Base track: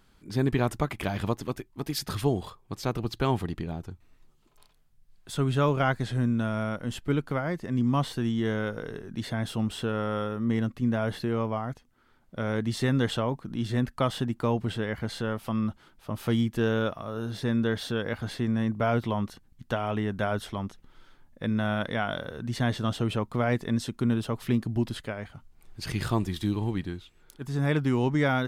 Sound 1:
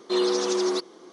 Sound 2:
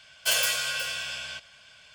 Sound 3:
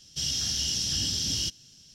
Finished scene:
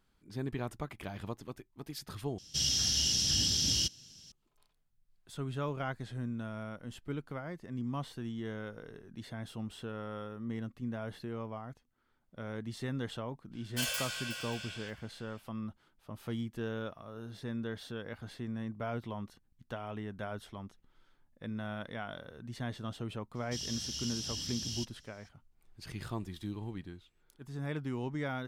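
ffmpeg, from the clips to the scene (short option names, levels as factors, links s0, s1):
-filter_complex "[3:a]asplit=2[s0][s1];[0:a]volume=0.251[s2];[2:a]aecho=1:1:581:0.0668[s3];[s2]asplit=2[s4][s5];[s4]atrim=end=2.384[s6];[s0]atrim=end=1.94,asetpts=PTS-STARTPTS,volume=0.891[s7];[s5]atrim=start=4.316[s8];[s3]atrim=end=1.94,asetpts=PTS-STARTPTS,volume=0.299,afade=t=in:d=0.05,afade=t=out:st=1.89:d=0.05,adelay=13510[s9];[s1]atrim=end=1.94,asetpts=PTS-STARTPTS,volume=0.282,afade=t=in:d=0.004:c=hsin,afade=t=out:st=1.936:d=0.004:c=hsin,adelay=23350[s10];[s6][s7]acrossfade=d=0.004:c1=hsin:c2=hsin[s11];[s11][s8]acrossfade=d=0.004:c1=hsin:c2=hsin[s12];[s12][s9][s10]amix=inputs=3:normalize=0"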